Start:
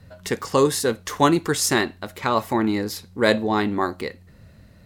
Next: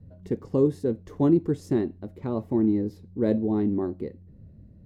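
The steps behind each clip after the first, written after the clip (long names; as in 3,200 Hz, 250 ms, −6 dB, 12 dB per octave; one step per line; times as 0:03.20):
drawn EQ curve 340 Hz 0 dB, 1,300 Hz −24 dB, 2,000 Hz −24 dB, 9,000 Hz −30 dB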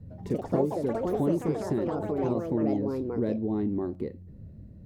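downward compressor 2.5 to 1, threshold −32 dBFS, peak gain reduction 11.5 dB
delay with pitch and tempo change per echo 96 ms, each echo +4 semitones, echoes 3
level +3 dB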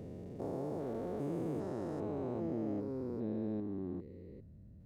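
spectrum averaged block by block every 400 ms
level −8 dB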